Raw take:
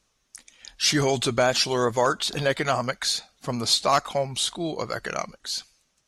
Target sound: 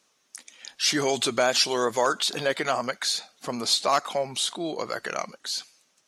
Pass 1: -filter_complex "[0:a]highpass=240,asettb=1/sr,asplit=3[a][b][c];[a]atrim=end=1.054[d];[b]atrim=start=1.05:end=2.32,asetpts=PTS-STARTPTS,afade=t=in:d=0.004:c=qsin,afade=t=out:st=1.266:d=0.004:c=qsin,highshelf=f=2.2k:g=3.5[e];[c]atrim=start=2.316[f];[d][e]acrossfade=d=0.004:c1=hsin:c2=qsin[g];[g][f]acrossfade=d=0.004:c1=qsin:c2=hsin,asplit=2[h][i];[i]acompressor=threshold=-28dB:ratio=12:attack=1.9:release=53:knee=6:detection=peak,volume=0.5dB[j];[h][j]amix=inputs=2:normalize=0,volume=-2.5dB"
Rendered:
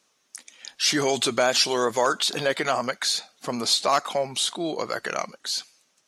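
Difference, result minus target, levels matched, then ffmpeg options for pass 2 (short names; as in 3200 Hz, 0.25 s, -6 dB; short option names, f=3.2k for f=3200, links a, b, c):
compressor: peak gain reduction -8.5 dB
-filter_complex "[0:a]highpass=240,asettb=1/sr,asplit=3[a][b][c];[a]atrim=end=1.054[d];[b]atrim=start=1.05:end=2.32,asetpts=PTS-STARTPTS,afade=t=in:d=0.004:c=qsin,afade=t=out:st=1.266:d=0.004:c=qsin,highshelf=f=2.2k:g=3.5[e];[c]atrim=start=2.316[f];[d][e]acrossfade=d=0.004:c1=hsin:c2=qsin[g];[g][f]acrossfade=d=0.004:c1=qsin:c2=hsin,asplit=2[h][i];[i]acompressor=threshold=-37.5dB:ratio=12:attack=1.9:release=53:knee=6:detection=peak,volume=0.5dB[j];[h][j]amix=inputs=2:normalize=0,volume=-2.5dB"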